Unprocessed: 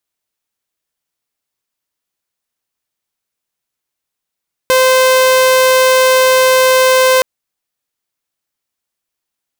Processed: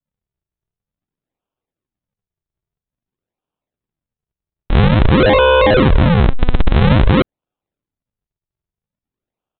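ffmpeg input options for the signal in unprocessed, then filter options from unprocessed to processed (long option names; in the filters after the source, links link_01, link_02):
-f lavfi -i "aevalsrc='0.596*(2*mod(517*t,1)-1)':duration=2.52:sample_rate=44100"
-af "aresample=8000,acrusher=samples=18:mix=1:aa=0.000001:lfo=1:lforange=28.8:lforate=0.5,aresample=44100,adynamicequalizer=threshold=0.0562:dfrequency=2100:dqfactor=0.7:tfrequency=2100:tqfactor=0.7:attack=5:release=100:ratio=0.375:range=2:mode=cutabove:tftype=highshelf"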